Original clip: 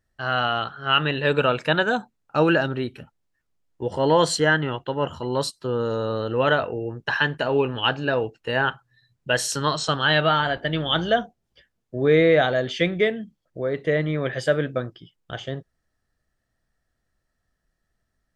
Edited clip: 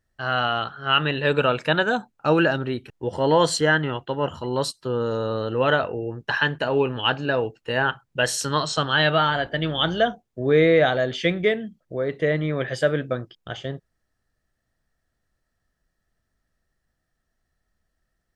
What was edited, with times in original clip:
truncate silence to 0.21 s

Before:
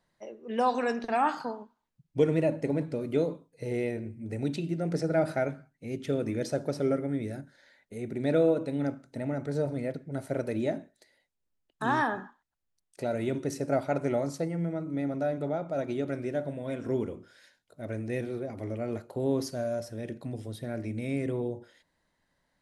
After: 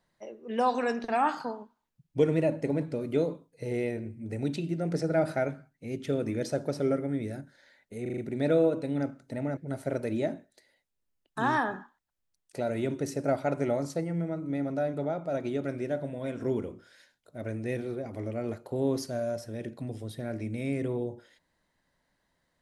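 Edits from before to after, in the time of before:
0:08.02: stutter 0.04 s, 5 plays
0:09.41–0:10.01: remove

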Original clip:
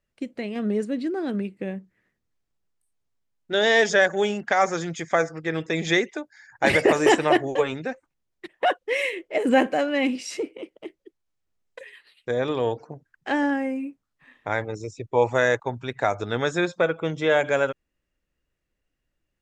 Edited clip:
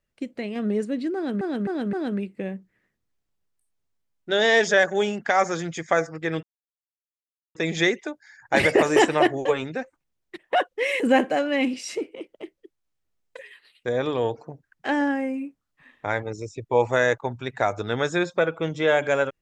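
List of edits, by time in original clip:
0:01.15–0:01.41: repeat, 4 plays
0:05.65: splice in silence 1.12 s
0:09.10–0:09.42: remove

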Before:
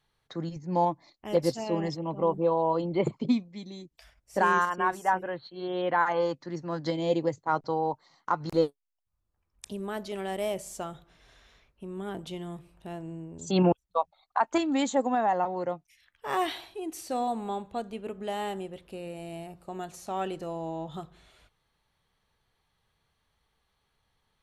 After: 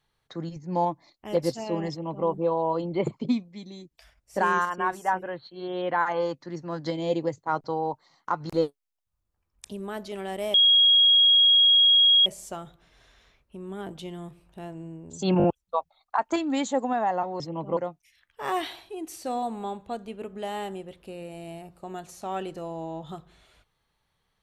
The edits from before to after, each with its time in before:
0:01.90–0:02.27: duplicate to 0:15.62
0:10.54: insert tone 3,290 Hz −14.5 dBFS 1.72 s
0:13.66: stutter 0.02 s, 4 plays

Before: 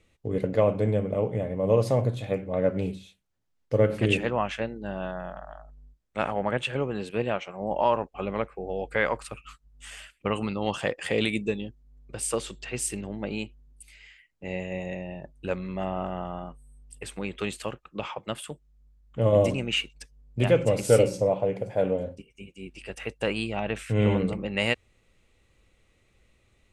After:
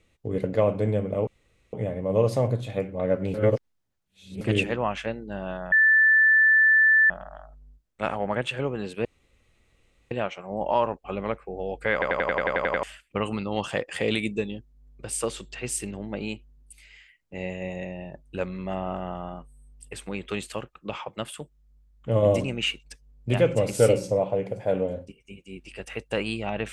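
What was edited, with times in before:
0:01.27: splice in room tone 0.46 s
0:02.88–0:03.95: reverse
0:05.26: insert tone 1,760 Hz −14.5 dBFS 1.38 s
0:07.21: splice in room tone 1.06 s
0:09.03: stutter in place 0.09 s, 10 plays

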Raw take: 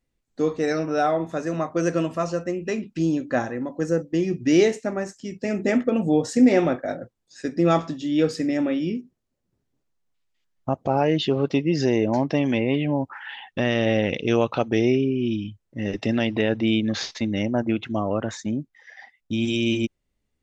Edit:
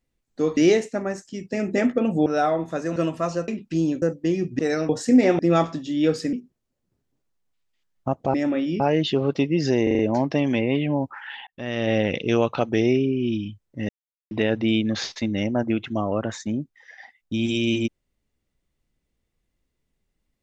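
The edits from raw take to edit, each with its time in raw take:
0:00.57–0:00.87: swap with 0:04.48–0:06.17
0:01.57–0:01.93: remove
0:02.45–0:02.73: remove
0:03.27–0:03.91: remove
0:06.67–0:07.54: remove
0:08.48–0:08.94: move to 0:10.95
0:11.98: stutter 0.04 s, 5 plays
0:13.46–0:13.94: fade in
0:15.88–0:16.30: silence

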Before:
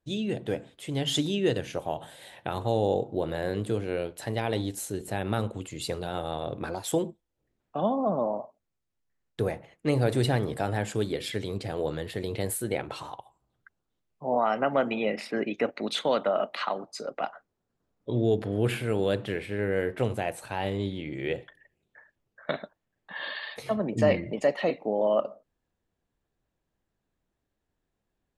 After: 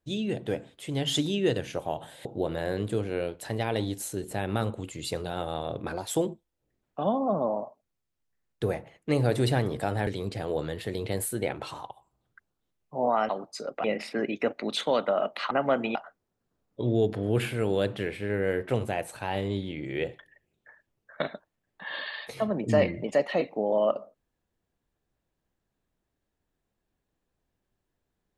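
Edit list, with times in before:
0:02.25–0:03.02: remove
0:10.84–0:11.36: remove
0:14.58–0:15.02: swap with 0:16.69–0:17.24

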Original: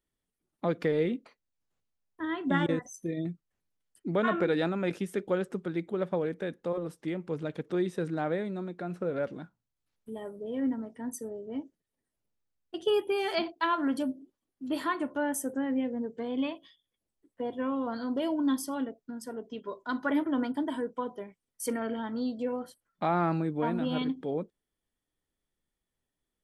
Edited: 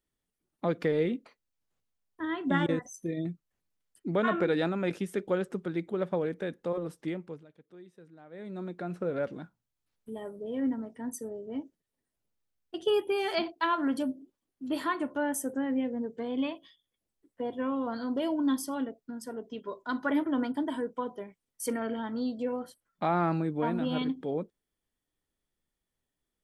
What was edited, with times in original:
0:07.08–0:08.68: duck −21.5 dB, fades 0.37 s

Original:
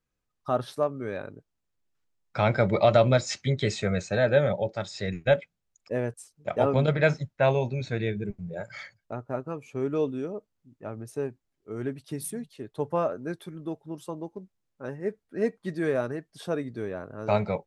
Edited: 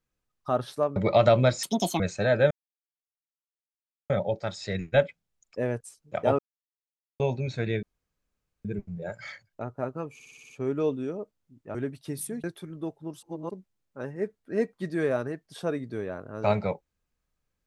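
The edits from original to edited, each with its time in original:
0:00.96–0:02.64: remove
0:03.31–0:03.92: play speed 166%
0:04.43: splice in silence 1.59 s
0:06.72–0:07.53: silence
0:08.16: splice in room tone 0.82 s
0:09.65: stutter 0.06 s, 7 plays
0:10.90–0:11.78: remove
0:12.47–0:13.28: remove
0:14.07–0:14.35: reverse

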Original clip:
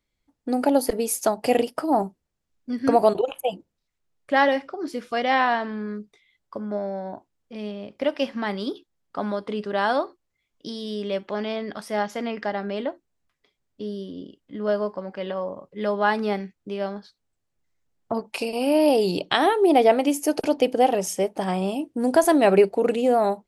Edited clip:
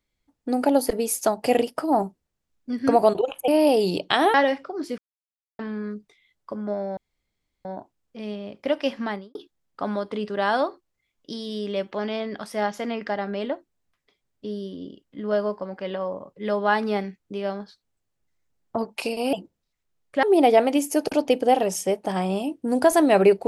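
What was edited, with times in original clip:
0:03.48–0:04.38: swap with 0:18.69–0:19.55
0:05.02–0:05.63: silence
0:07.01: splice in room tone 0.68 s
0:08.39–0:08.71: fade out and dull

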